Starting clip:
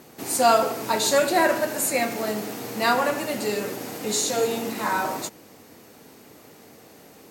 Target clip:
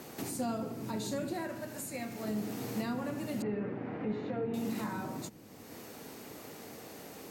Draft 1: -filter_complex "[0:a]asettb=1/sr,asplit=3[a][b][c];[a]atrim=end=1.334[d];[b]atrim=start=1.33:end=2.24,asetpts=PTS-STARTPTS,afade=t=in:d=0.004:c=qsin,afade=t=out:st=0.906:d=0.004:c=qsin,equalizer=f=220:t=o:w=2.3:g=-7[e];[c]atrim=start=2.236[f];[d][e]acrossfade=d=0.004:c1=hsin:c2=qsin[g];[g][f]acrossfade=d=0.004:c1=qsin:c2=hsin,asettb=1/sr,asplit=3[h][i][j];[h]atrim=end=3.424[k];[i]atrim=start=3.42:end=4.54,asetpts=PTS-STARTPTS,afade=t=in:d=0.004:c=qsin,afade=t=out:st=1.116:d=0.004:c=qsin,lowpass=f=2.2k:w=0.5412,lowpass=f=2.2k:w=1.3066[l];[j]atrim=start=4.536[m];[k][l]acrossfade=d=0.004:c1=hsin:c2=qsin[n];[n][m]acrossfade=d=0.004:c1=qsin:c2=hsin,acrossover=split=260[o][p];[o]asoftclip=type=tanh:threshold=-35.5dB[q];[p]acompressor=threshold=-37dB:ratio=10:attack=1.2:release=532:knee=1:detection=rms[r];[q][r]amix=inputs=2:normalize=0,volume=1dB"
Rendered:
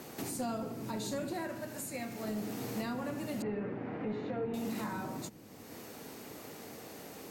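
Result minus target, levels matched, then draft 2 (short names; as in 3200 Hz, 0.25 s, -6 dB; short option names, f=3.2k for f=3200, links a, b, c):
soft clip: distortion +10 dB
-filter_complex "[0:a]asettb=1/sr,asplit=3[a][b][c];[a]atrim=end=1.334[d];[b]atrim=start=1.33:end=2.24,asetpts=PTS-STARTPTS,afade=t=in:d=0.004:c=qsin,afade=t=out:st=0.906:d=0.004:c=qsin,equalizer=f=220:t=o:w=2.3:g=-7[e];[c]atrim=start=2.236[f];[d][e]acrossfade=d=0.004:c1=hsin:c2=qsin[g];[g][f]acrossfade=d=0.004:c1=qsin:c2=hsin,asettb=1/sr,asplit=3[h][i][j];[h]atrim=end=3.424[k];[i]atrim=start=3.42:end=4.54,asetpts=PTS-STARTPTS,afade=t=in:d=0.004:c=qsin,afade=t=out:st=1.116:d=0.004:c=qsin,lowpass=f=2.2k:w=0.5412,lowpass=f=2.2k:w=1.3066[l];[j]atrim=start=4.536[m];[k][l]acrossfade=d=0.004:c1=hsin:c2=qsin[n];[n][m]acrossfade=d=0.004:c1=qsin:c2=hsin,acrossover=split=260[o][p];[o]asoftclip=type=tanh:threshold=-28dB[q];[p]acompressor=threshold=-37dB:ratio=10:attack=1.2:release=532:knee=1:detection=rms[r];[q][r]amix=inputs=2:normalize=0,volume=1dB"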